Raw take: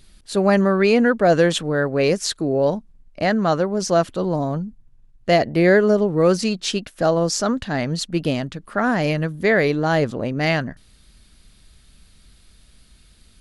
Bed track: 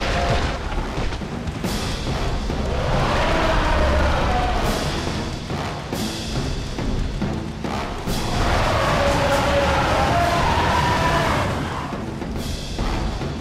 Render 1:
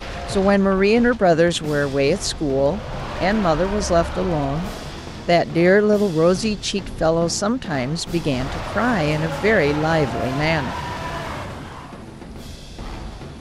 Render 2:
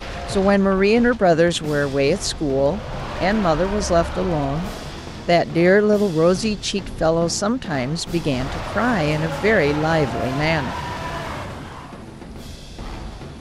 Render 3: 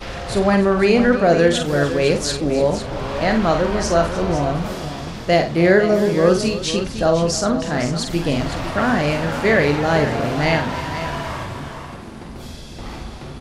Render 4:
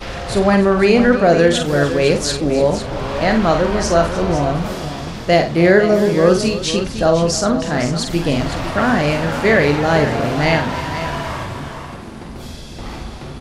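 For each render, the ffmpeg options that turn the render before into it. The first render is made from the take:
-filter_complex "[1:a]volume=0.355[s0];[0:a][s0]amix=inputs=2:normalize=0"
-af anull
-filter_complex "[0:a]asplit=2[s0][s1];[s1]adelay=41,volume=0.282[s2];[s0][s2]amix=inputs=2:normalize=0,asplit=2[s3][s4];[s4]aecho=0:1:49|302|506:0.422|0.178|0.282[s5];[s3][s5]amix=inputs=2:normalize=0"
-af "volume=1.33,alimiter=limit=0.891:level=0:latency=1"

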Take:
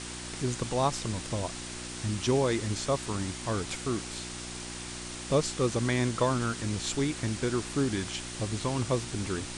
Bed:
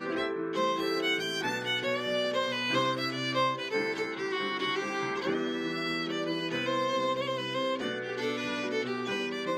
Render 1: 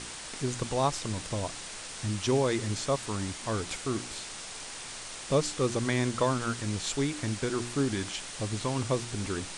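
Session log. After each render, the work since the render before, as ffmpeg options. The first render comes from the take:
-af "bandreject=f=60:t=h:w=4,bandreject=f=120:t=h:w=4,bandreject=f=180:t=h:w=4,bandreject=f=240:t=h:w=4,bandreject=f=300:t=h:w=4,bandreject=f=360:t=h:w=4"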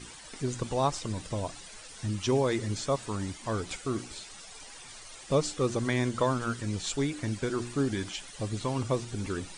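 -af "afftdn=nr=12:nf=-42"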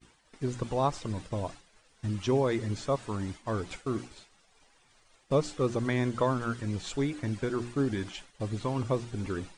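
-af "agate=range=0.0224:threshold=0.0141:ratio=3:detection=peak,highshelf=f=4100:g=-10.5"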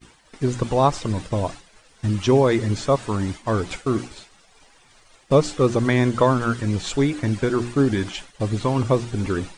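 -af "volume=3.16"

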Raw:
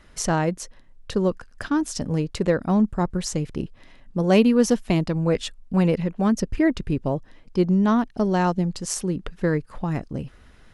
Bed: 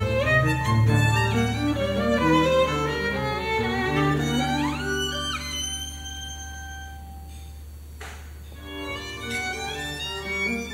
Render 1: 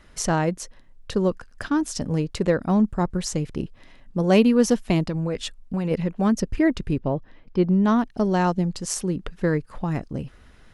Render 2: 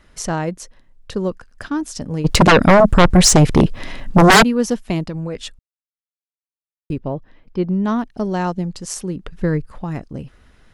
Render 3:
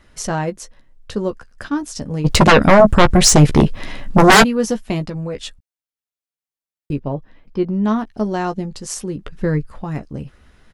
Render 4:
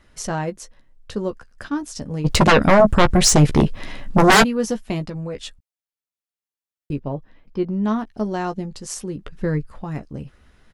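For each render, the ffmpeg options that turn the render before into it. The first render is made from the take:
-filter_complex "[0:a]asplit=3[s0][s1][s2];[s0]afade=t=out:st=5.06:d=0.02[s3];[s1]acompressor=threshold=0.0891:ratio=6:attack=3.2:release=140:knee=1:detection=peak,afade=t=in:st=5.06:d=0.02,afade=t=out:st=5.9:d=0.02[s4];[s2]afade=t=in:st=5.9:d=0.02[s5];[s3][s4][s5]amix=inputs=3:normalize=0,asplit=3[s6][s7][s8];[s6]afade=t=out:st=6.98:d=0.02[s9];[s7]lowpass=3600,afade=t=in:st=6.98:d=0.02,afade=t=out:st=7.84:d=0.02[s10];[s8]afade=t=in:st=7.84:d=0.02[s11];[s9][s10][s11]amix=inputs=3:normalize=0"
-filter_complex "[0:a]asplit=3[s0][s1][s2];[s0]afade=t=out:st=2.24:d=0.02[s3];[s1]aeval=exprs='0.562*sin(PI/2*6.31*val(0)/0.562)':c=same,afade=t=in:st=2.24:d=0.02,afade=t=out:st=4.42:d=0.02[s4];[s2]afade=t=in:st=4.42:d=0.02[s5];[s3][s4][s5]amix=inputs=3:normalize=0,asettb=1/sr,asplit=3[s6][s7][s8];[s6]atrim=end=9.324[s9];[s7]atrim=start=9.32:end=9.72,asetpts=PTS-STARTPTS,afade=t=in:d=0.004:c=qsin,afade=t=out:st=0.396:d=0.004:c=qsin,lowshelf=f=150:g=11.5[s10];[s8]atrim=start=9.716[s11];[s9][s10]acrossfade=d=0.004:c1=hsin:c2=qsin[s12];[s12][s11]acrossfade=d=0.004:c1=qsin:c2=hsin,asplit=3[s13][s14][s15];[s13]atrim=end=5.59,asetpts=PTS-STARTPTS,afade=t=out:st=5.586:d=0.004:c=hsin[s16];[s14]atrim=start=5.59:end=6.9,asetpts=PTS-STARTPTS,volume=0[s17];[s15]atrim=start=6.9,asetpts=PTS-STARTPTS,afade=t=in:d=0.004:c=hsin[s18];[s16][s17][s18]concat=n=3:v=0:a=1"
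-filter_complex "[0:a]asplit=2[s0][s1];[s1]adelay=14,volume=0.398[s2];[s0][s2]amix=inputs=2:normalize=0"
-af "volume=0.668"

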